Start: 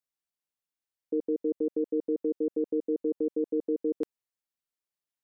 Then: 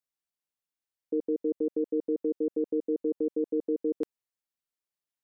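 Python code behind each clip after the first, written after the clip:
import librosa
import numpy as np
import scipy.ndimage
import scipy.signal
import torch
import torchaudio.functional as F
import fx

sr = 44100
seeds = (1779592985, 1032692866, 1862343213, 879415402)

y = x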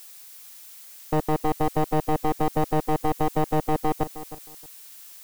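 y = np.minimum(x, 2.0 * 10.0 ** (-31.5 / 20.0) - x)
y = fx.dmg_noise_colour(y, sr, seeds[0], colour='blue', level_db=-54.0)
y = fx.echo_feedback(y, sr, ms=313, feedback_pct=22, wet_db=-14.0)
y = F.gain(torch.from_numpy(y), 8.5).numpy()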